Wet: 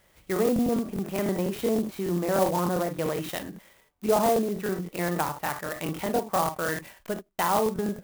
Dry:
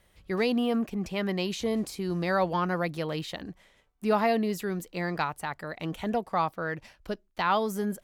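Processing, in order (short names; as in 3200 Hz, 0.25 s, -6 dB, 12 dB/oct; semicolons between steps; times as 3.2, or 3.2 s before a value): treble ducked by the level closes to 850 Hz, closed at -24 dBFS; low shelf 140 Hz -9.5 dB; non-linear reverb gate 80 ms rising, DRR 7.5 dB; crackling interface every 0.10 s, samples 1024, repeat, from 0.34; clock jitter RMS 0.051 ms; gain +4 dB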